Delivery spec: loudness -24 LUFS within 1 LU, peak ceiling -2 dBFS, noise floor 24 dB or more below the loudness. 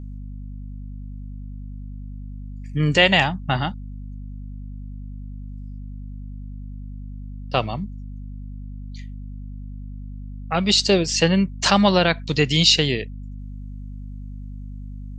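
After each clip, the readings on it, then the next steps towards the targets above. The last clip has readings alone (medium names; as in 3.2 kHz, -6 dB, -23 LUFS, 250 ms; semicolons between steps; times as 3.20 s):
hum 50 Hz; highest harmonic 250 Hz; hum level -32 dBFS; loudness -19.0 LUFS; peak level -1.0 dBFS; loudness target -24.0 LUFS
-> de-hum 50 Hz, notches 5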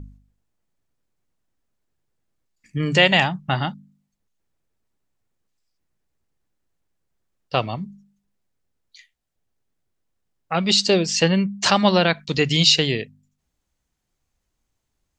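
hum not found; loudness -19.0 LUFS; peak level -1.0 dBFS; loudness target -24.0 LUFS
-> trim -5 dB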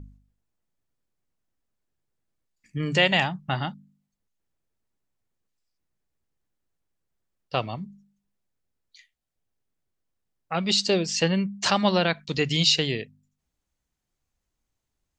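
loudness -24.0 LUFS; peak level -6.0 dBFS; noise floor -82 dBFS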